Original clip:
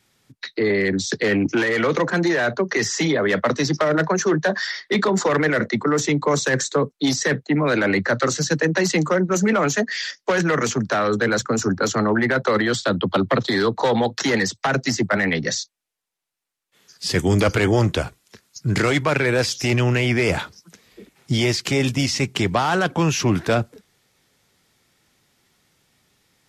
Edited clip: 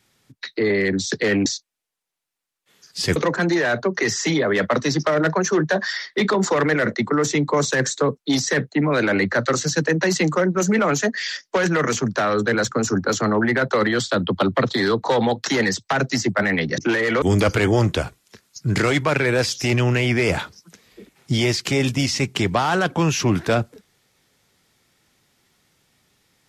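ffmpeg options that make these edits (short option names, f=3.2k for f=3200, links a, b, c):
-filter_complex "[0:a]asplit=5[a][b][c][d][e];[a]atrim=end=1.462[f];[b]atrim=start=15.518:end=17.222[g];[c]atrim=start=1.898:end=15.522[h];[d]atrim=start=1.458:end=1.902[i];[e]atrim=start=17.218[j];[f][g]acrossfade=d=0.004:c1=hsin:c2=hsin[k];[k][h]acrossfade=d=0.004:c1=hsin:c2=hsin[l];[l][i]acrossfade=d=0.004:c1=hsin:c2=hsin[m];[m][j]acrossfade=d=0.004:c1=hsin:c2=hsin"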